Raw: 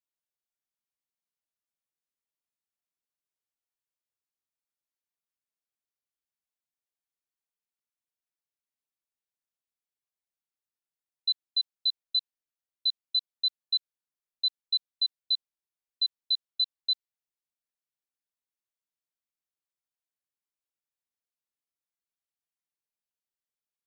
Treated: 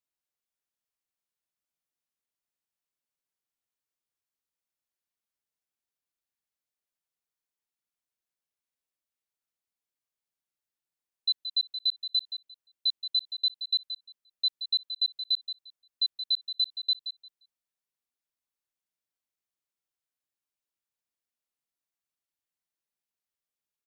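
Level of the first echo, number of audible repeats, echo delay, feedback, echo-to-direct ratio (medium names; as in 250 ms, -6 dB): -10.0 dB, 2, 175 ms, 19%, -10.0 dB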